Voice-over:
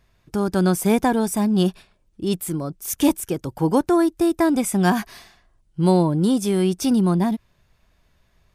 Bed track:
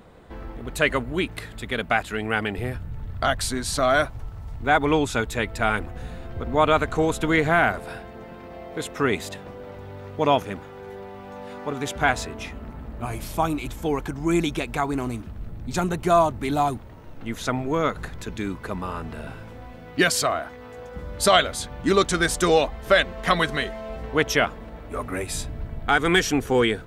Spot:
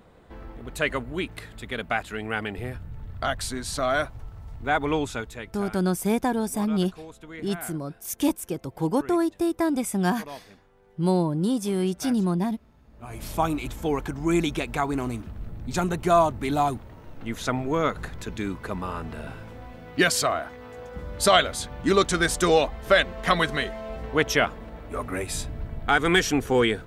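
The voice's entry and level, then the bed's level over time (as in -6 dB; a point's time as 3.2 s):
5.20 s, -5.5 dB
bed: 5.04 s -4.5 dB
5.8 s -20.5 dB
12.83 s -20.5 dB
13.27 s -1 dB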